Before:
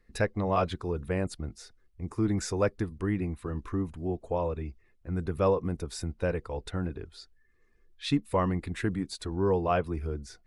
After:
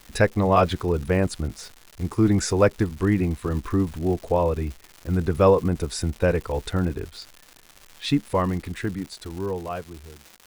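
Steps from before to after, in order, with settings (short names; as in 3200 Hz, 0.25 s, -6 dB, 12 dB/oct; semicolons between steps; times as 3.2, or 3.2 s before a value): ending faded out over 3.45 s; crackle 310/s -42 dBFS; gain +8.5 dB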